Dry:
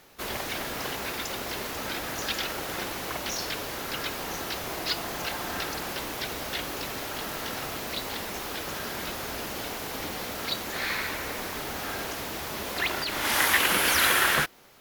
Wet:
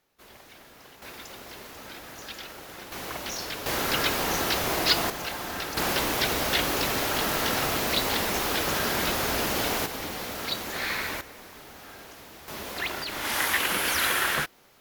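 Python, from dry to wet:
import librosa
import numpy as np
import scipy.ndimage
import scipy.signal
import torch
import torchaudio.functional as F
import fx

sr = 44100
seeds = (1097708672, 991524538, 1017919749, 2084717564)

y = fx.gain(x, sr, db=fx.steps((0.0, -17.5), (1.02, -9.5), (2.92, -2.0), (3.66, 7.0), (5.1, -1.0), (5.77, 7.5), (9.86, 0.0), (11.21, -12.0), (12.48, -3.0)))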